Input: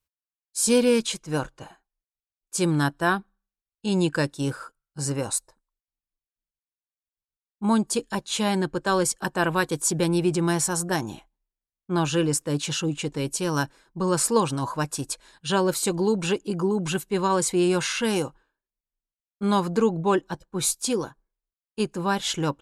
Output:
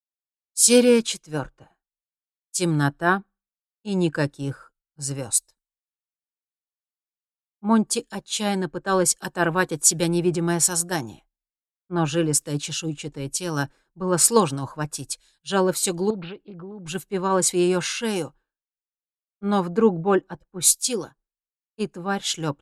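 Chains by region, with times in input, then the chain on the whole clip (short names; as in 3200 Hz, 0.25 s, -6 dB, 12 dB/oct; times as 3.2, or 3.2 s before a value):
16.1–16.85 steep low-pass 4500 Hz 96 dB/oct + compressor 4:1, threshold -27 dBFS + Doppler distortion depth 0.12 ms
whole clip: notch 1000 Hz, Q 12; three-band expander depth 100%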